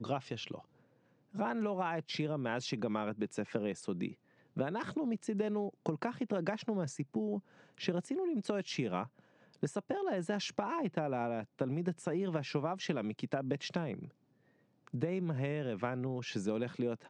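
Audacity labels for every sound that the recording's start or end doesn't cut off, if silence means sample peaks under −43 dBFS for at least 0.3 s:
1.350000	4.120000	sound
4.570000	7.390000	sound
7.780000	9.060000	sound
9.630000	14.050000	sound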